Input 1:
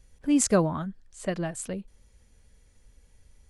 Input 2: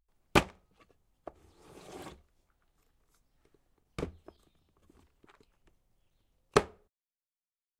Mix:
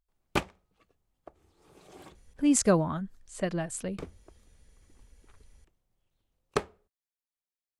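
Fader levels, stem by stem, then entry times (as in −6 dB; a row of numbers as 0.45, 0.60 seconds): −1.0, −4.0 decibels; 2.15, 0.00 seconds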